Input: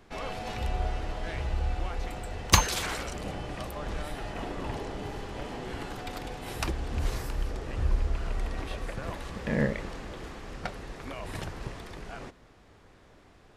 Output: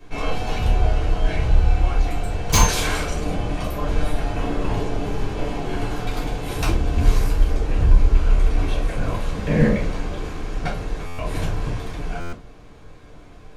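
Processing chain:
gain into a clipping stage and back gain 19.5 dB
convolution reverb RT60 0.35 s, pre-delay 3 ms, DRR −6.5 dB
buffer that repeats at 0:11.06/0:12.20, samples 512, times 10
level −2 dB

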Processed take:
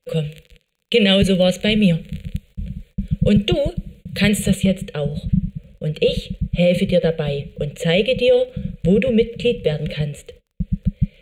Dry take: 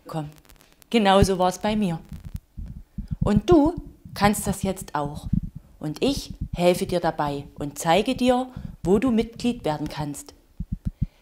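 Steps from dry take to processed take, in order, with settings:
Butterworth band-reject 5,300 Hz, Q 1.5
noise gate −49 dBFS, range −28 dB
drawn EQ curve 110 Hz 0 dB, 200 Hz +5 dB, 280 Hz −26 dB, 490 Hz +10 dB, 900 Hz −29 dB, 1,400 Hz −11 dB, 2,400 Hz +4 dB, 4,700 Hz 0 dB, 9,200 Hz −15 dB, 14,000 Hz −18 dB
brickwall limiter −14 dBFS, peak gain reduction 10.5 dB
high-shelf EQ 3,100 Hz +11.5 dB, from 0:04.66 +2.5 dB
surface crackle 29 per second −55 dBFS
level +7 dB

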